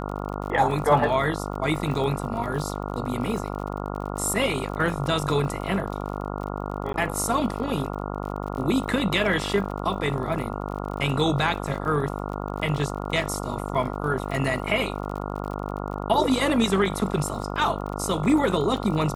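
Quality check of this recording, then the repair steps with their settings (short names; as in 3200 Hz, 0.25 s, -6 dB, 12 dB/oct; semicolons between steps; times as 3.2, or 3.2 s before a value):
buzz 50 Hz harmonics 28 -31 dBFS
crackle 42/s -33 dBFS
6.93–6.94 gap 12 ms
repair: de-click; de-hum 50 Hz, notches 28; interpolate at 6.93, 12 ms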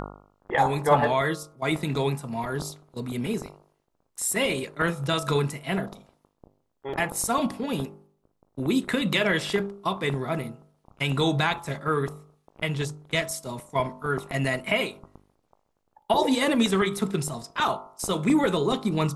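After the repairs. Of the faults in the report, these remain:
none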